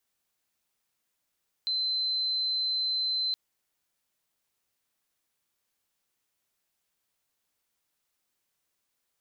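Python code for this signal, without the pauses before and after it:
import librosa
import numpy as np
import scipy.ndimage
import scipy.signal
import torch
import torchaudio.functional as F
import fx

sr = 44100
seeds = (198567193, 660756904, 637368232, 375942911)

y = 10.0 ** (-26.0 / 20.0) * np.sin(2.0 * np.pi * (4070.0 * (np.arange(round(1.67 * sr)) / sr)))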